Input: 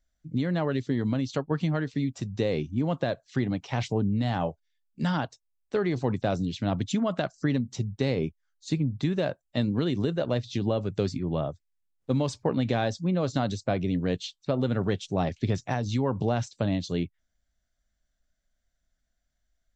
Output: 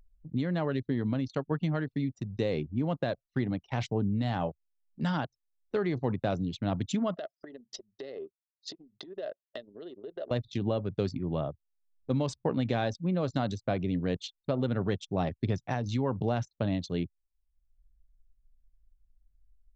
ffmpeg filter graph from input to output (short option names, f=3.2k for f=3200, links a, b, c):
-filter_complex "[0:a]asettb=1/sr,asplit=3[a][b][c];[a]atrim=end=7.164[d];[b]atrim=start=7.16:end=10.31,asetpts=PTS-STARTPTS,afade=t=in:d=0.004:c=qsin,afade=t=out:st=3.146:d=0.004:c=qsin,acompressor=threshold=-33dB:ratio=12:attack=3.2:release=140:knee=1:detection=peak,asuperstop=centerf=2300:order=4:qfactor=6.2,highpass=390,equalizer=f=400:t=q:w=4:g=9,equalizer=f=630:t=q:w=4:g=10,equalizer=f=930:t=q:w=4:g=-8,equalizer=f=1.9k:t=q:w=4:g=5,equalizer=f=3.2k:t=q:w=4:g=5,equalizer=f=5k:t=q:w=4:g=9,lowpass=f=6.5k:w=0.5412,lowpass=f=6.5k:w=1.3066[e];[c]atrim=start=10.306[f];[d][e]acrossfade=d=0.004:c1=hsin:c2=qsin[g];[g][f]acrossfade=d=0.004:c1=qsin:c2=hsin,anlmdn=1,acompressor=mode=upward:threshold=-41dB:ratio=2.5,volume=-3dB"